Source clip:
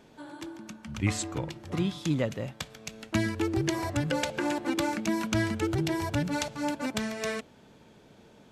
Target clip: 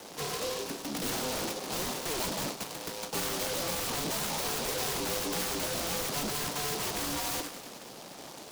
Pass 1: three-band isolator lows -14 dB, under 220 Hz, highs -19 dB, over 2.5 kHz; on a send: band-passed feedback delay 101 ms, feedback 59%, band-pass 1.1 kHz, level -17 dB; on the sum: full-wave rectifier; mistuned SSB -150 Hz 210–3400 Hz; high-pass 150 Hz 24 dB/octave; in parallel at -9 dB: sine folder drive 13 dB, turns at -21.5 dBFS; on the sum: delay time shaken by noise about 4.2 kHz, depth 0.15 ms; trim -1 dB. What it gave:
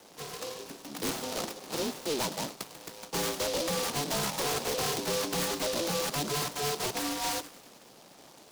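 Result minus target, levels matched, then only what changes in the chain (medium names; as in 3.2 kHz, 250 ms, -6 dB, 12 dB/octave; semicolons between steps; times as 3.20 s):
sine folder: distortion -19 dB
change: sine folder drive 23 dB, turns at -21.5 dBFS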